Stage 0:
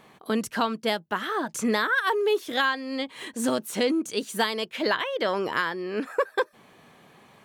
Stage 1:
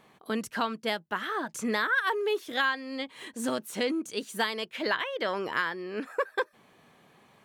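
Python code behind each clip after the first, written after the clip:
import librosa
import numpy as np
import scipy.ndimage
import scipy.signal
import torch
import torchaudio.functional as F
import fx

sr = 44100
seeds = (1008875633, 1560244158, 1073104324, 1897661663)

y = fx.dynamic_eq(x, sr, hz=1900.0, q=0.92, threshold_db=-37.0, ratio=4.0, max_db=4)
y = F.gain(torch.from_numpy(y), -5.5).numpy()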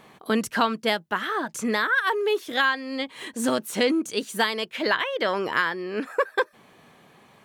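y = fx.rider(x, sr, range_db=10, speed_s=2.0)
y = F.gain(torch.from_numpy(y), 5.0).numpy()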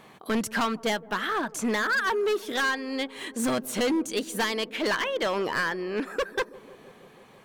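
y = np.clip(10.0 ** (22.0 / 20.0) * x, -1.0, 1.0) / 10.0 ** (22.0 / 20.0)
y = fx.echo_wet_lowpass(y, sr, ms=164, feedback_pct=75, hz=710.0, wet_db=-19.0)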